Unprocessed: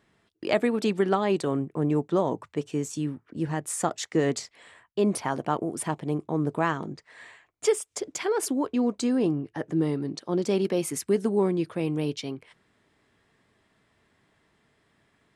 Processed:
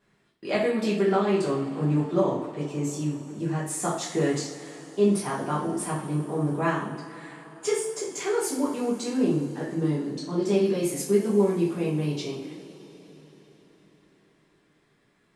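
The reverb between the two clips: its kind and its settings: two-slope reverb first 0.48 s, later 4.7 s, from -20 dB, DRR -7.5 dB; gain -8 dB

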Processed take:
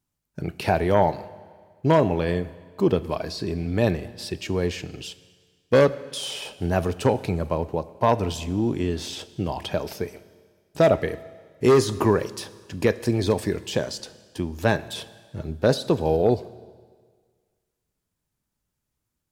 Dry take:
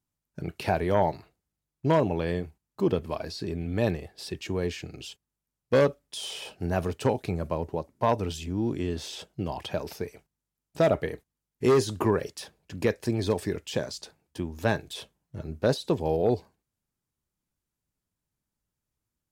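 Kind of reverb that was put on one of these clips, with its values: Schroeder reverb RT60 1.7 s, combs from 26 ms, DRR 16 dB; gain +4.5 dB

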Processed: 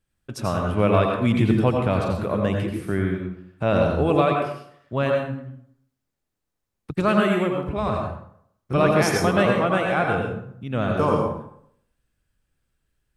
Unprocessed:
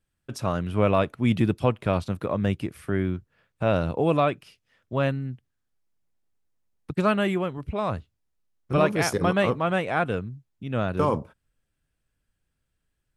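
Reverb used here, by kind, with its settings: plate-style reverb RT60 0.67 s, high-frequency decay 0.65×, pre-delay 75 ms, DRR 1 dB; gain +1 dB

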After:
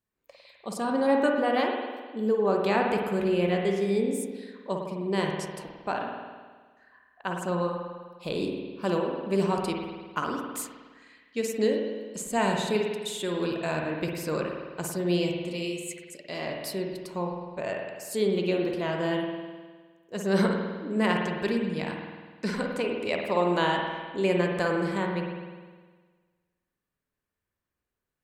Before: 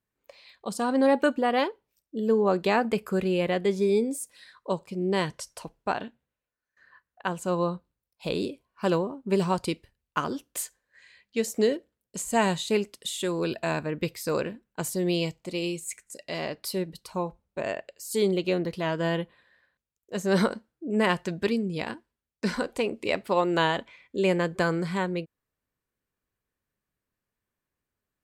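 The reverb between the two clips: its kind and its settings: spring tank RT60 1.5 s, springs 51 ms, chirp 75 ms, DRR 1 dB; gain -3 dB

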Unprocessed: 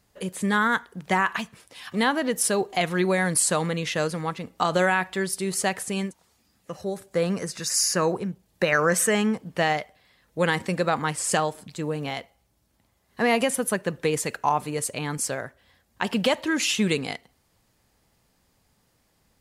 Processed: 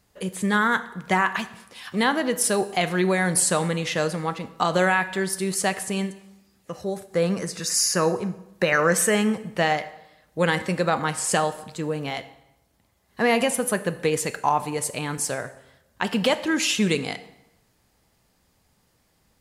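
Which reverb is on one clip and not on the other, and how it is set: plate-style reverb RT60 0.94 s, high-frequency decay 0.8×, DRR 11.5 dB; gain +1 dB

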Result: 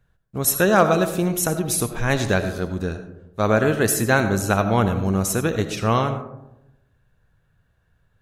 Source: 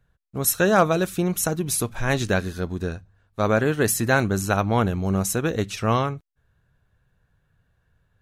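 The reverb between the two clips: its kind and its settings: digital reverb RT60 0.91 s, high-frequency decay 0.3×, pre-delay 40 ms, DRR 9 dB; gain +1.5 dB

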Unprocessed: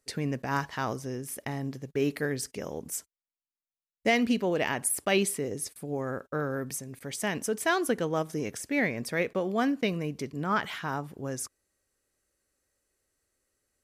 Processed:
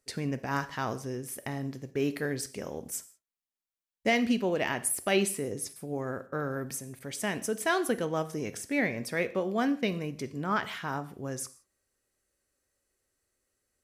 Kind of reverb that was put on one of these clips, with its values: non-linear reverb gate 0.2 s falling, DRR 11.5 dB; gain -1.5 dB

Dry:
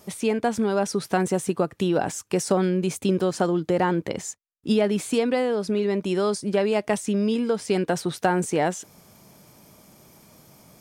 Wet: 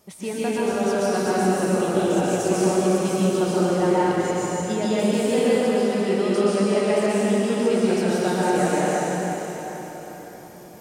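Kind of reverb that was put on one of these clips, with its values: plate-style reverb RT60 4.6 s, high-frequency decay 0.85×, pre-delay 0.11 s, DRR -9.5 dB; gain -7 dB

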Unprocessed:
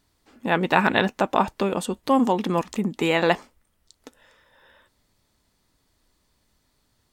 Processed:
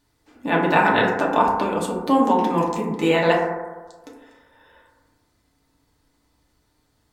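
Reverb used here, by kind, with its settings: FDN reverb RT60 1.3 s, low-frequency decay 0.85×, high-frequency decay 0.25×, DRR -3.5 dB; gain -2.5 dB

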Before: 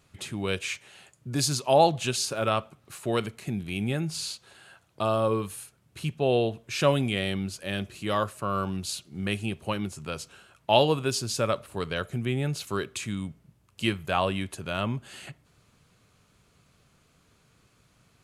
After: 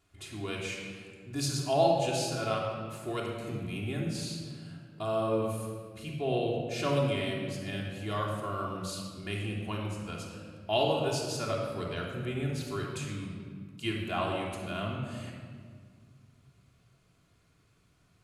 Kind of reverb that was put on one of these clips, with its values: shoebox room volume 2900 m³, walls mixed, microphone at 3.2 m; gain -10 dB

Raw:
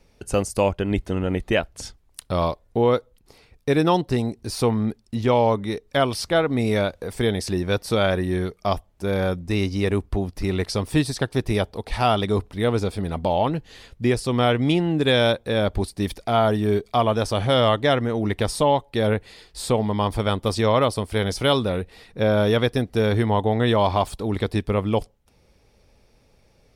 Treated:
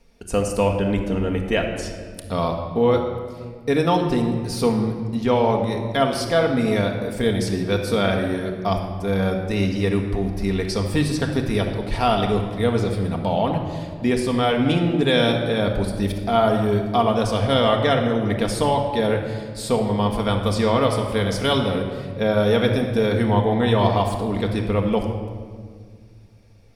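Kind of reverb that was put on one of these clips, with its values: shoebox room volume 2600 m³, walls mixed, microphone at 1.7 m; gain -1.5 dB

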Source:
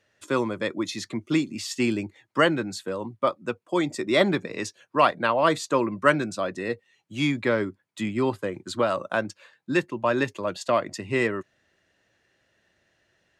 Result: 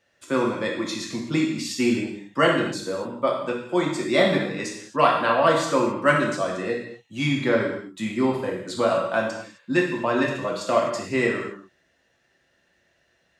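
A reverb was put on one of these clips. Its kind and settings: non-linear reverb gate 0.29 s falling, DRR -2 dB; gain -2 dB

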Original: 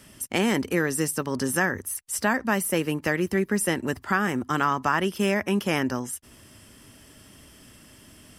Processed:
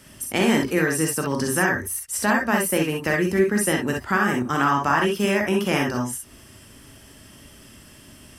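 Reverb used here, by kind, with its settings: non-linear reverb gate 80 ms rising, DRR 0.5 dB; gain +1 dB

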